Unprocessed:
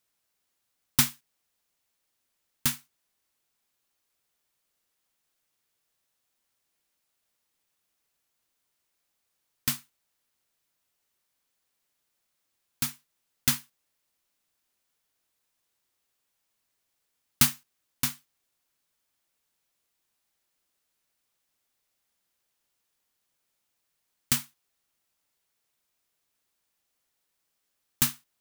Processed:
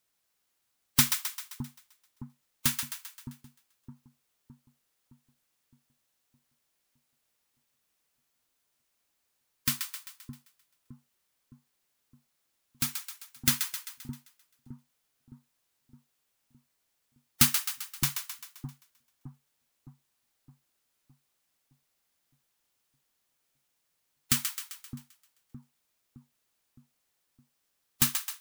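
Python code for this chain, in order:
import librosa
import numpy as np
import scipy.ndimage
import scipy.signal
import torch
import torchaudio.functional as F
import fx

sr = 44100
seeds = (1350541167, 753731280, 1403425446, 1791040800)

y = fx.spec_gate(x, sr, threshold_db=-20, keep='strong')
y = fx.echo_split(y, sr, split_hz=730.0, low_ms=614, high_ms=131, feedback_pct=52, wet_db=-7)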